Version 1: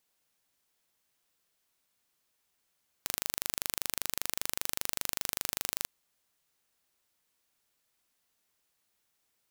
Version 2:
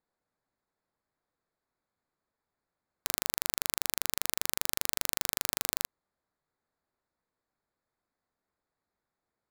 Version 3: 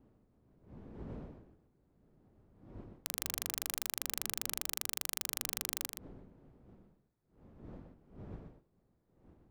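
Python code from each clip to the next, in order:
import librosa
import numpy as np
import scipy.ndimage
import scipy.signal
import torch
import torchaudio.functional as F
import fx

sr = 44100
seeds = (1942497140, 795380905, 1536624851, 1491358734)

y1 = fx.wiener(x, sr, points=15)
y1 = fx.leveller(y1, sr, passes=1)
y1 = y1 * 10.0 ** (2.5 / 20.0)
y2 = fx.dmg_wind(y1, sr, seeds[0], corner_hz=280.0, level_db=-49.0)
y2 = y2 + 10.0 ** (-6.0 / 20.0) * np.pad(y2, (int(122 * sr / 1000.0), 0))[:len(y2)]
y2 = y2 * 10.0 ** (-7.0 / 20.0)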